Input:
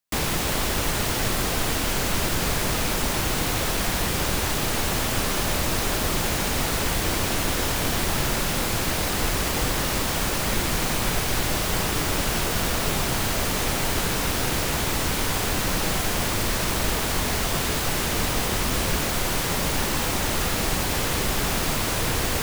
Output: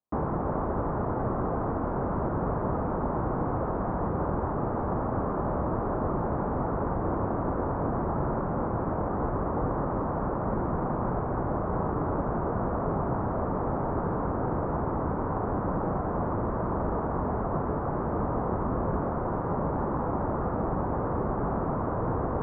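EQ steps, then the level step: HPF 80 Hz 6 dB/oct; steep low-pass 1200 Hz 36 dB/oct; 0.0 dB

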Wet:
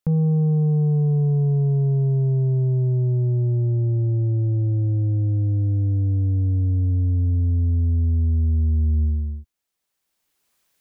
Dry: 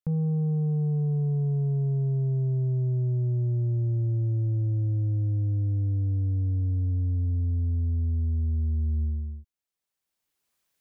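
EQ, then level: bell 110 Hz -3 dB 0.75 oct; +8.0 dB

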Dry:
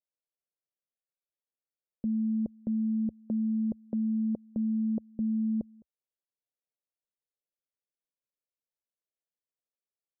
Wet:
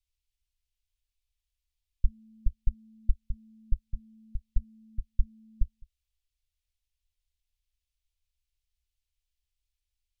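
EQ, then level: inverse Chebyshev band-stop 270–690 Hz, stop band 80 dB; tilt -4 dB/oct; +17.0 dB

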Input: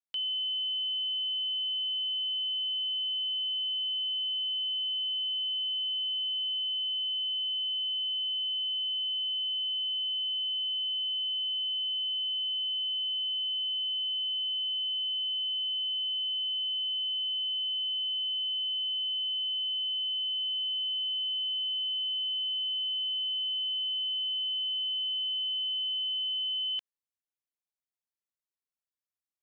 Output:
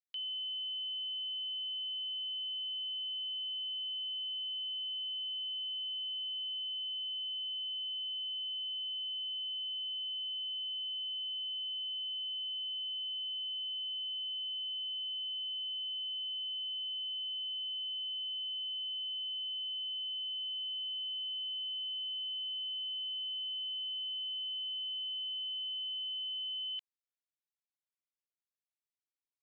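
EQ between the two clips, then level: band-pass 2900 Hz, Q 1.9; bell 2900 Hz -7 dB; 0.0 dB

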